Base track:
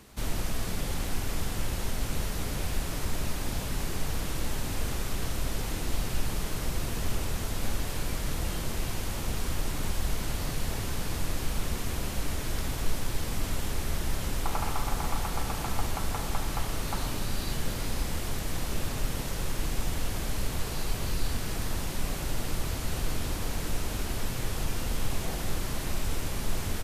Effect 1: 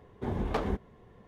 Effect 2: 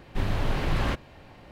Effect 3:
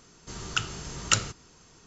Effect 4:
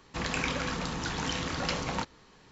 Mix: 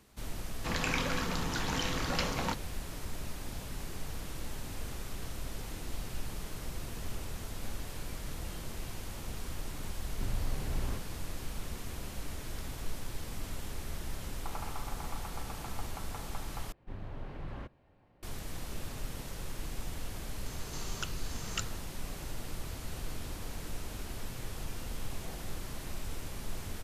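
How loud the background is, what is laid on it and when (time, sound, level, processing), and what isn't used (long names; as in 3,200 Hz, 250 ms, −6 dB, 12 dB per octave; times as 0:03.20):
base track −9 dB
0:00.50: mix in 4 −1.5 dB
0:10.03: mix in 2 −16.5 dB + spectral tilt −2 dB per octave
0:16.72: overwrite with 2 −15.5 dB + high-shelf EQ 2,200 Hz −12 dB
0:20.46: mix in 3 −11 dB + multiband upward and downward compressor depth 70%
not used: 1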